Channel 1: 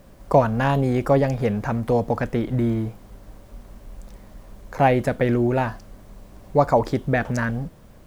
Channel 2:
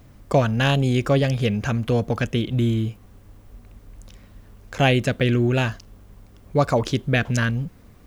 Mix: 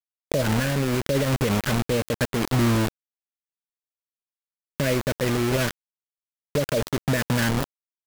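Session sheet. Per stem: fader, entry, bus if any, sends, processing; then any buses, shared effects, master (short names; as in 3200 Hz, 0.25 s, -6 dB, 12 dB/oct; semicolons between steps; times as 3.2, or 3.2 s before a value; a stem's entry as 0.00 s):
-1.0 dB, 0.00 s, no send, de-esser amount 60%
-13.5 dB, 0.00 s, no send, limiter -16 dBFS, peak gain reduction 10.5 dB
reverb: off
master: FFT band-reject 660–1400 Hz; bit-crush 4-bit; limiter -15 dBFS, peak gain reduction 7.5 dB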